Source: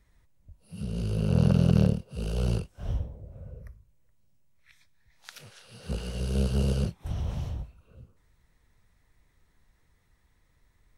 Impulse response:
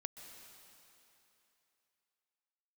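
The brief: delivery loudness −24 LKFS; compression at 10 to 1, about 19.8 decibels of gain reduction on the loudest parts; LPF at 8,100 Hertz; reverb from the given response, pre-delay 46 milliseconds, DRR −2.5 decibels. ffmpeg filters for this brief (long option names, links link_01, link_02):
-filter_complex "[0:a]lowpass=8100,acompressor=threshold=-37dB:ratio=10,asplit=2[link_01][link_02];[1:a]atrim=start_sample=2205,adelay=46[link_03];[link_02][link_03]afir=irnorm=-1:irlink=0,volume=5.5dB[link_04];[link_01][link_04]amix=inputs=2:normalize=0,volume=15.5dB"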